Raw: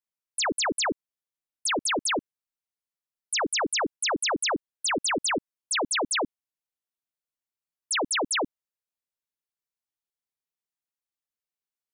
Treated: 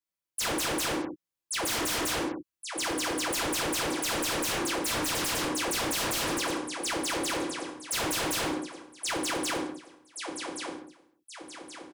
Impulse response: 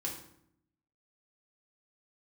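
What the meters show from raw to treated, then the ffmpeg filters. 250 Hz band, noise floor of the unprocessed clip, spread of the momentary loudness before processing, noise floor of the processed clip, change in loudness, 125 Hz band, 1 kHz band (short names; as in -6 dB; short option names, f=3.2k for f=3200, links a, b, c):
+2.0 dB, under -85 dBFS, 6 LU, under -85 dBFS, -3.0 dB, +8.5 dB, -1.5 dB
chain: -filter_complex "[0:a]aecho=1:1:1125|2250|3375|4500|5625:0.596|0.244|0.1|0.0411|0.0168[a];[1:a]atrim=start_sample=2205,afade=t=out:st=0.28:d=0.01,atrim=end_sample=12789[b];[a][b]afir=irnorm=-1:irlink=0,aeval=exprs='0.0562*(abs(mod(val(0)/0.0562+3,4)-2)-1)':c=same"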